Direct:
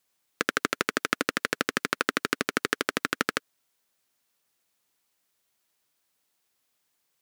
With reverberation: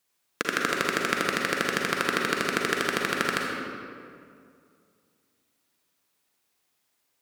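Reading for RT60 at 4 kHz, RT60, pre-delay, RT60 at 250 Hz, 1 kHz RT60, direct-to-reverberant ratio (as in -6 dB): 1.3 s, 2.3 s, 38 ms, 2.7 s, 2.2 s, -1.5 dB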